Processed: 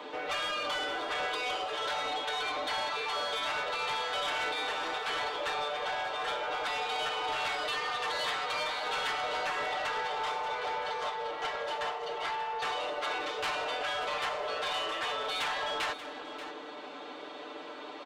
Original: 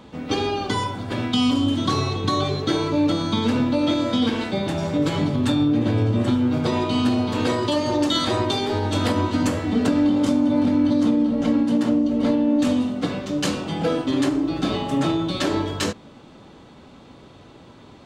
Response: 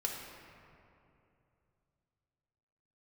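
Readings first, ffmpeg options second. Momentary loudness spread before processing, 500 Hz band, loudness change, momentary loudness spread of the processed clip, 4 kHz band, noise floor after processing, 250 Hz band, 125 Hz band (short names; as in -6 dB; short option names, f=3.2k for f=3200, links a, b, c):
6 LU, -11.0 dB, -11.0 dB, 6 LU, -5.5 dB, -44 dBFS, -32.5 dB, -33.5 dB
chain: -filter_complex "[0:a]acrossover=split=3600[a][b];[b]acompressor=threshold=-43dB:ratio=4:attack=1:release=60[c];[a][c]amix=inputs=2:normalize=0,afftfilt=real='re*lt(hypot(re,im),0.141)':imag='im*lt(hypot(re,im),0.141)':win_size=1024:overlap=0.75,highpass=f=220:w=0.5412,highpass=f=220:w=1.3066,acrossover=split=370 4300:gain=0.0891 1 0.224[d][e][f];[d][e][f]amix=inputs=3:normalize=0,aecho=1:1:6.7:0.85,asplit=2[g][h];[h]acompressor=threshold=-41dB:ratio=6,volume=-1.5dB[i];[g][i]amix=inputs=2:normalize=0,asoftclip=type=tanh:threshold=-28dB,aecho=1:1:584:0.224"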